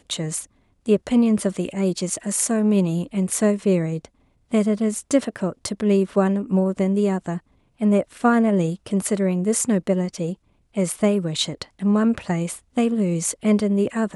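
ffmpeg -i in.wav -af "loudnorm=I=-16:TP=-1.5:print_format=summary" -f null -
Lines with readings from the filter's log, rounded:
Input Integrated:    -21.8 LUFS
Input True Peak:      -3.8 dBTP
Input LRA:             1.3 LU
Input Threshold:     -32.0 LUFS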